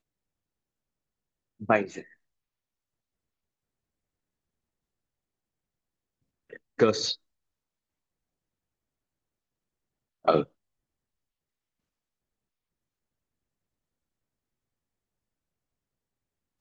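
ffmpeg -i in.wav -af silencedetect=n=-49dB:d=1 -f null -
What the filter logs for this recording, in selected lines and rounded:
silence_start: 0.00
silence_end: 1.60 | silence_duration: 1.60
silence_start: 2.13
silence_end: 6.50 | silence_duration: 4.37
silence_start: 7.15
silence_end: 10.25 | silence_duration: 3.09
silence_start: 10.46
silence_end: 16.61 | silence_duration: 6.15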